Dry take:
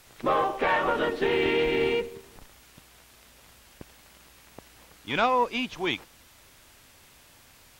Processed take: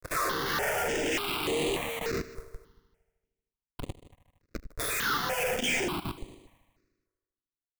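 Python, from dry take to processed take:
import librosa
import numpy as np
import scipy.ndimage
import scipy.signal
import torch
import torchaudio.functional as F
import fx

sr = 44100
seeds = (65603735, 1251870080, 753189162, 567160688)

y = fx.spec_delay(x, sr, highs='early', ms=673)
y = fx.vibrato(y, sr, rate_hz=1.9, depth_cents=46.0)
y = fx.transient(y, sr, attack_db=7, sustain_db=2)
y = scipy.signal.sosfilt(scipy.signal.butter(2, 10000.0, 'lowpass', fs=sr, output='sos'), y)
y = fx.hum_notches(y, sr, base_hz=60, count=2)
y = fx.room_shoebox(y, sr, seeds[0], volume_m3=84.0, walls='mixed', distance_m=1.6)
y = fx.schmitt(y, sr, flips_db=-32.5)
y = fx.level_steps(y, sr, step_db=23)
y = fx.low_shelf(y, sr, hz=190.0, db=-10.5)
y = 10.0 ** (-23.0 / 20.0) * np.tanh(y / 10.0 ** (-23.0 / 20.0))
y = fx.echo_heads(y, sr, ms=77, heads='all three', feedback_pct=43, wet_db=-21.5)
y = fx.phaser_held(y, sr, hz=3.4, low_hz=830.0, high_hz=5400.0)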